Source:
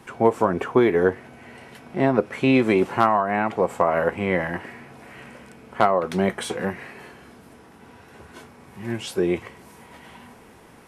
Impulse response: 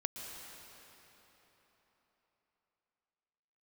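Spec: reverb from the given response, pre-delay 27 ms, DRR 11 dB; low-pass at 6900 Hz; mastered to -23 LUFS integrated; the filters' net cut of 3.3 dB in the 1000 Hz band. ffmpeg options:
-filter_complex "[0:a]lowpass=6.9k,equalizer=f=1k:t=o:g=-4.5,asplit=2[a][b];[1:a]atrim=start_sample=2205,adelay=27[c];[b][c]afir=irnorm=-1:irlink=0,volume=-12dB[d];[a][d]amix=inputs=2:normalize=0"

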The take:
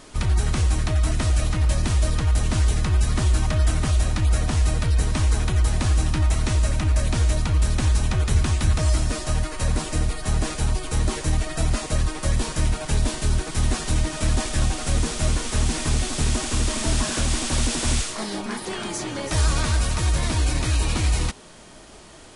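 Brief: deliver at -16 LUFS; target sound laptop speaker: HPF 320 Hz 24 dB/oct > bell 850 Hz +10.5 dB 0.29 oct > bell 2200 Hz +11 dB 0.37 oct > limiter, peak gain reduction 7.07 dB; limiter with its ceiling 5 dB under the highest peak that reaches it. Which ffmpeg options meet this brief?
-af "alimiter=limit=-13.5dB:level=0:latency=1,highpass=f=320:w=0.5412,highpass=f=320:w=1.3066,equalizer=f=850:t=o:w=0.29:g=10.5,equalizer=f=2.2k:t=o:w=0.37:g=11,volume=13dB,alimiter=limit=-6dB:level=0:latency=1"

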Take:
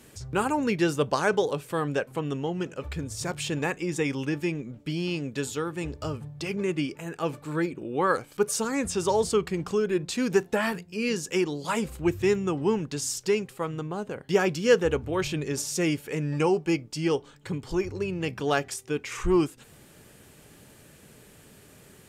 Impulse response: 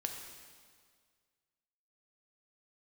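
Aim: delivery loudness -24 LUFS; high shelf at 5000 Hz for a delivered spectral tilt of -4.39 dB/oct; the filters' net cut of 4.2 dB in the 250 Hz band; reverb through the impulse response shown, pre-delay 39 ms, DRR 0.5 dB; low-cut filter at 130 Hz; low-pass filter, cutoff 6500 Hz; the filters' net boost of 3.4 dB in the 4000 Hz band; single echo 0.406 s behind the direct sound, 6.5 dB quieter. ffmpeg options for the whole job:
-filter_complex "[0:a]highpass=130,lowpass=6.5k,equalizer=f=250:t=o:g=-6,equalizer=f=4k:t=o:g=8.5,highshelf=f=5k:g=-6,aecho=1:1:406:0.473,asplit=2[a][b];[1:a]atrim=start_sample=2205,adelay=39[c];[b][c]afir=irnorm=-1:irlink=0,volume=-1dB[d];[a][d]amix=inputs=2:normalize=0,volume=2dB"

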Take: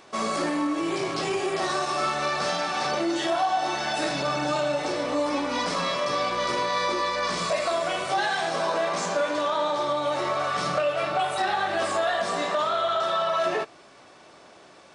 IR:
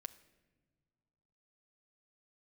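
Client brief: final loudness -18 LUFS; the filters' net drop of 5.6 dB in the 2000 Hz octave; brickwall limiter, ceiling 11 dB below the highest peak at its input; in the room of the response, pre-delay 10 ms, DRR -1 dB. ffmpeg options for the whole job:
-filter_complex "[0:a]equalizer=f=2k:t=o:g=-7.5,alimiter=level_in=2dB:limit=-24dB:level=0:latency=1,volume=-2dB,asplit=2[a][b];[1:a]atrim=start_sample=2205,adelay=10[c];[b][c]afir=irnorm=-1:irlink=0,volume=5.5dB[d];[a][d]amix=inputs=2:normalize=0,volume=12dB"

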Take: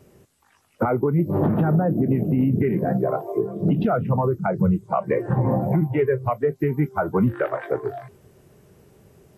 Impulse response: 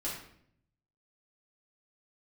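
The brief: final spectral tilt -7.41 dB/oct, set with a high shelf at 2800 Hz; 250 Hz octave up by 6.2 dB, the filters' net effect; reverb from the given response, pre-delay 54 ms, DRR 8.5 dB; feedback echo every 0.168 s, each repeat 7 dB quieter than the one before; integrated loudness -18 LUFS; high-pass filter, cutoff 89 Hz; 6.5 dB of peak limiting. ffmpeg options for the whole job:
-filter_complex "[0:a]highpass=89,equalizer=f=250:t=o:g=8.5,highshelf=f=2.8k:g=5,alimiter=limit=-11dB:level=0:latency=1,aecho=1:1:168|336|504|672|840:0.447|0.201|0.0905|0.0407|0.0183,asplit=2[a][b];[1:a]atrim=start_sample=2205,adelay=54[c];[b][c]afir=irnorm=-1:irlink=0,volume=-11dB[d];[a][d]amix=inputs=2:normalize=0,volume=1dB"

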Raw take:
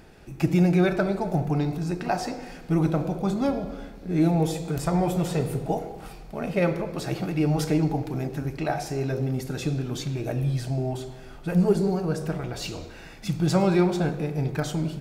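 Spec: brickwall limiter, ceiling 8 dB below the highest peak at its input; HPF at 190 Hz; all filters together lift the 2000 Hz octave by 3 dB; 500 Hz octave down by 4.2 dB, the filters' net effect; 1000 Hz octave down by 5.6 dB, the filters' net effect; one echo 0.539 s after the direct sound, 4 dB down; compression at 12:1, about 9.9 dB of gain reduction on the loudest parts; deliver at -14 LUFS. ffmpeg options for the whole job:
-af "highpass=190,equalizer=f=500:t=o:g=-4,equalizer=f=1k:t=o:g=-8,equalizer=f=2k:t=o:g=7,acompressor=threshold=-29dB:ratio=12,alimiter=level_in=2dB:limit=-24dB:level=0:latency=1,volume=-2dB,aecho=1:1:539:0.631,volume=21dB"

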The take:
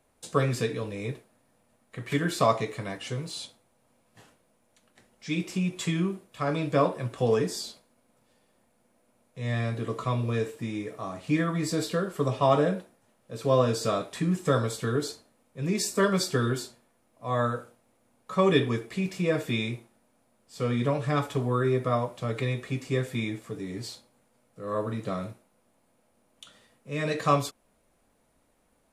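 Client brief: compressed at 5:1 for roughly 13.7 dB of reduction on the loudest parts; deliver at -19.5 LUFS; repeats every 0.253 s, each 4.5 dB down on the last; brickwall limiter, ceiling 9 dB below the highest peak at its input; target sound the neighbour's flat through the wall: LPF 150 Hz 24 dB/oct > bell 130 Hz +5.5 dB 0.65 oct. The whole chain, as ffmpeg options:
-af "acompressor=threshold=-33dB:ratio=5,alimiter=level_in=5.5dB:limit=-24dB:level=0:latency=1,volume=-5.5dB,lowpass=f=150:w=0.5412,lowpass=f=150:w=1.3066,equalizer=f=130:t=o:w=0.65:g=5.5,aecho=1:1:253|506|759|1012|1265|1518|1771|2024|2277:0.596|0.357|0.214|0.129|0.0772|0.0463|0.0278|0.0167|0.01,volume=22dB"

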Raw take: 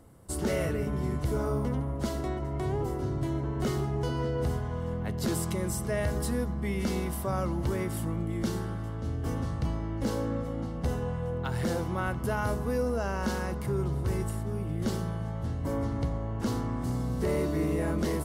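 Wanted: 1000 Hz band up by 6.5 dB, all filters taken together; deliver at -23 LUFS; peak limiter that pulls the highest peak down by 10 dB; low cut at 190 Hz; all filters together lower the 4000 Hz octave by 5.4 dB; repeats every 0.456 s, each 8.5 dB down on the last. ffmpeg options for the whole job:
-af "highpass=190,equalizer=f=1k:t=o:g=8.5,equalizer=f=4k:t=o:g=-8,alimiter=level_in=1.5dB:limit=-24dB:level=0:latency=1,volume=-1.5dB,aecho=1:1:456|912|1368|1824:0.376|0.143|0.0543|0.0206,volume=11.5dB"

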